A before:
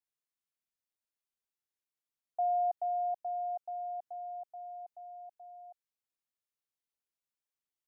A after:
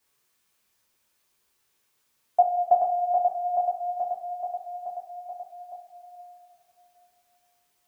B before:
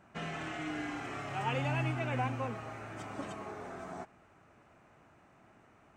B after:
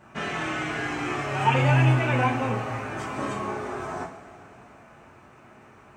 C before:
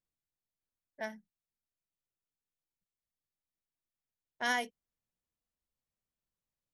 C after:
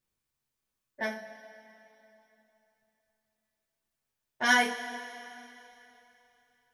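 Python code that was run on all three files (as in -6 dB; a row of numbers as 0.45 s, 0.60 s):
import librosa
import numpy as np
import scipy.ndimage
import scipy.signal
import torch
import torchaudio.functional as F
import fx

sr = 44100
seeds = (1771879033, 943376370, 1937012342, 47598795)

y = fx.rev_double_slope(x, sr, seeds[0], early_s=0.31, late_s=3.2, knee_db=-18, drr_db=-4.5)
y = y * 10.0 ** (-9 / 20.0) / np.max(np.abs(y))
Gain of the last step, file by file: +16.5 dB, +6.0 dB, +3.5 dB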